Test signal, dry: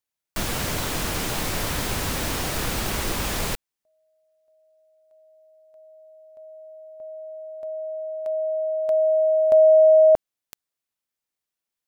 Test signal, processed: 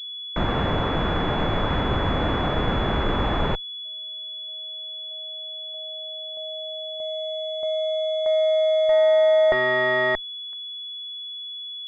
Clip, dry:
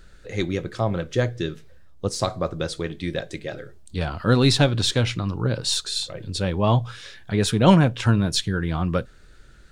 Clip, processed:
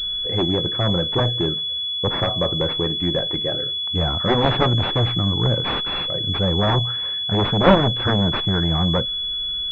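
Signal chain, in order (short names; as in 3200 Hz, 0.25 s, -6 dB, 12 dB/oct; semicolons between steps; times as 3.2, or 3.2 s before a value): added harmonics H 6 -27 dB, 7 -7 dB, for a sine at -2.5 dBFS; pulse-width modulation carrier 3400 Hz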